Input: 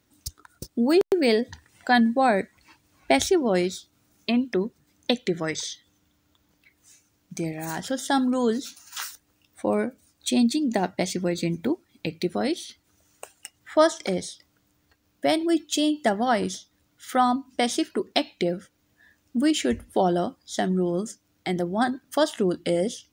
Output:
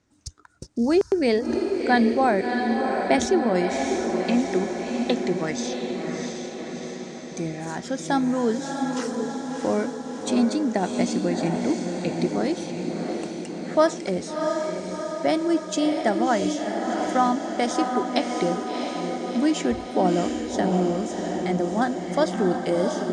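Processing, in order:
low-pass filter 7,600 Hz 24 dB per octave
parametric band 3,400 Hz −6.5 dB 0.96 octaves
feedback delay with all-pass diffusion 682 ms, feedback 63%, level −4 dB

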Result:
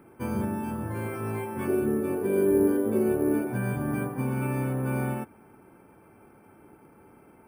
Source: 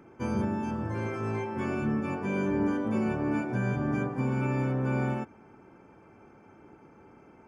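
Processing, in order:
0:01.67–0:03.47: graphic EQ with 15 bands 160 Hz −6 dB, 400 Hz +12 dB, 1,000 Hz −6 dB, 2,500 Hz −6 dB, 6,300 Hz −4 dB
bad sample-rate conversion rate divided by 4×, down filtered, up hold

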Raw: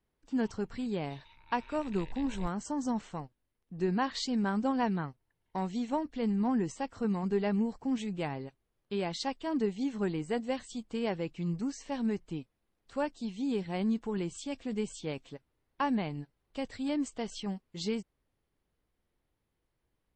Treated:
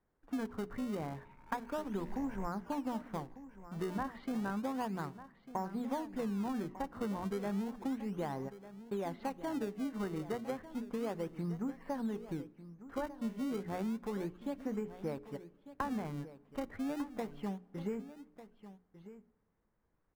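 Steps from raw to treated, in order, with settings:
one scale factor per block 5 bits
low-pass filter 1,700 Hz 24 dB per octave
low-shelf EQ 460 Hz −7 dB
in parallel at −8.5 dB: sample-and-hold swept by an LFO 30×, swing 160% 0.32 Hz
on the sum: mains-hum notches 60/120/180/240/300/360/420 Hz
downward compressor, threshold −39 dBFS, peak gain reduction 11.5 dB
single-tap delay 1,198 ms −14.5 dB
on a send at −23 dB: convolution reverb RT60 1.7 s, pre-delay 4 ms
on the sum: level +4.5 dB

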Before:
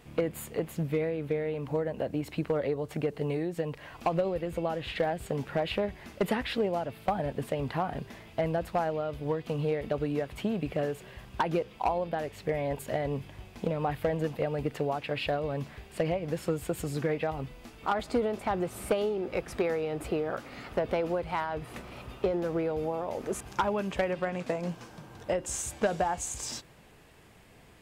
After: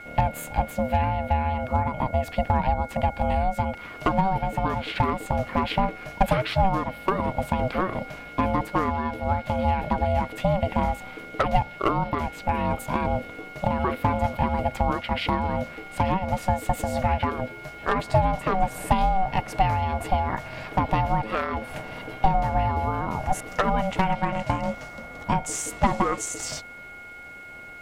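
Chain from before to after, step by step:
steady tone 1,800 Hz −44 dBFS
hollow resonant body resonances 260/370/2,400 Hz, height 7 dB, ringing for 35 ms
ring modulation 380 Hz
level +7 dB

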